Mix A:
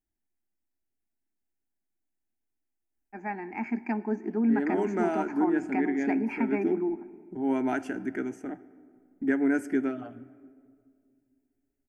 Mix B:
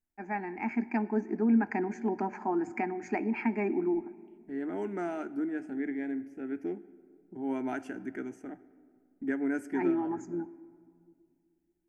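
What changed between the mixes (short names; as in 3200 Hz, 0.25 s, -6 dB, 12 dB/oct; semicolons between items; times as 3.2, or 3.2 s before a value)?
first voice: entry -2.95 s; second voice -6.0 dB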